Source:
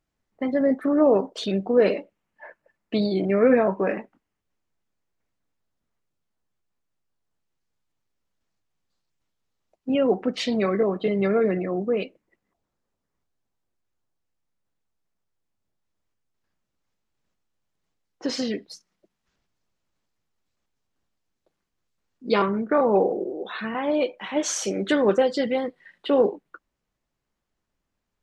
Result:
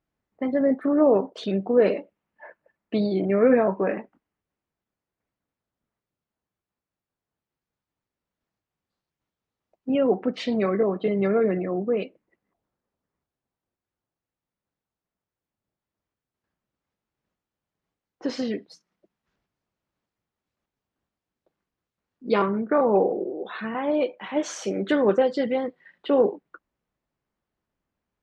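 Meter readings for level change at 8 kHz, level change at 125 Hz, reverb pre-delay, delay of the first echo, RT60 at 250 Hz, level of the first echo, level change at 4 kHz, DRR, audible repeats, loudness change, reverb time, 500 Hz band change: no reading, -0.5 dB, no reverb, no echo, no reverb, no echo, -5.5 dB, no reverb, no echo, -0.5 dB, no reverb, -0.5 dB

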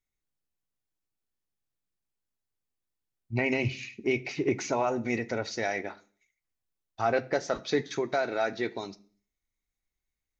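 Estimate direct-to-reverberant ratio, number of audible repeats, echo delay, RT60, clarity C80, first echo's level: 9.0 dB, no echo, no echo, 0.45 s, 24.0 dB, no echo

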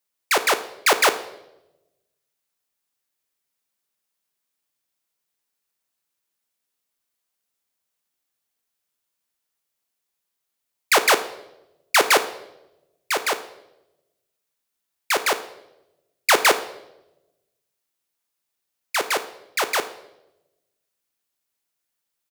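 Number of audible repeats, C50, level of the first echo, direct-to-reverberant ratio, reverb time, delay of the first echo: 1, 13.0 dB, -19.5 dB, 10.0 dB, 0.95 s, 73 ms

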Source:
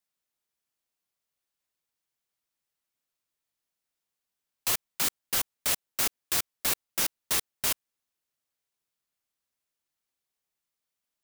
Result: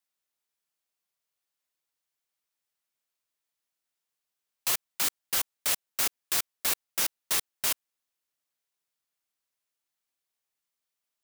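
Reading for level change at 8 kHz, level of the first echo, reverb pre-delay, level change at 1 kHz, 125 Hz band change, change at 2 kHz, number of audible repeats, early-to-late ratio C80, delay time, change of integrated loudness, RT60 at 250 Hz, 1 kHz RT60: 0.0 dB, no echo, no reverb, -0.5 dB, -6.0 dB, 0.0 dB, no echo, no reverb, no echo, 0.0 dB, no reverb, no reverb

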